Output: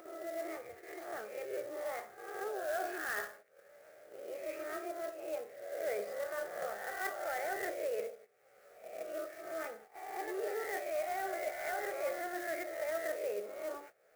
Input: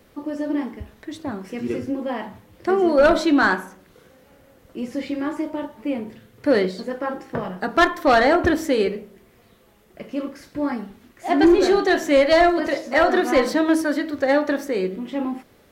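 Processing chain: spectral swells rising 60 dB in 0.57 s; HPF 530 Hz 12 dB/oct; bell 5800 Hz -14 dB 2.7 oct; reverse; compressor 8:1, threshold -30 dBFS, peak gain reduction 16 dB; reverse; fixed phaser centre 880 Hz, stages 6; pre-echo 0.161 s -13 dB; wide varispeed 1.11×; gate -52 dBFS, range -13 dB; upward compressor, threshold -40 dBFS; clock jitter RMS 0.034 ms; gain -3 dB

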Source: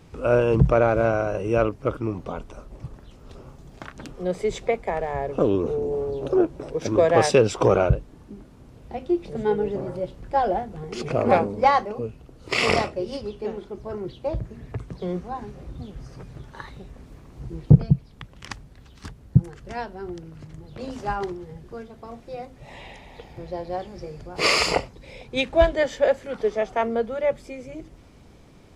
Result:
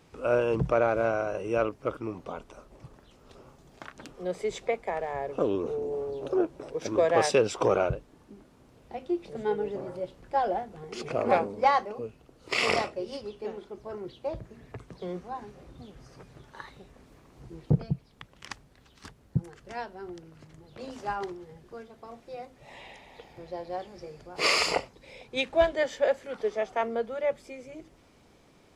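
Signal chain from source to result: low shelf 190 Hz -11.5 dB; gain -4 dB

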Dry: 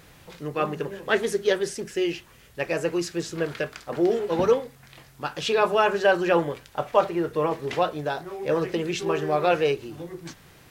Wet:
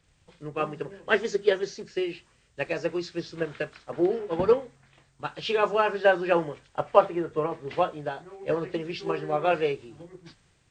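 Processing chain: nonlinear frequency compression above 2800 Hz 1.5:1; transient shaper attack +5 dB, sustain 0 dB; three-band expander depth 40%; gain -5 dB

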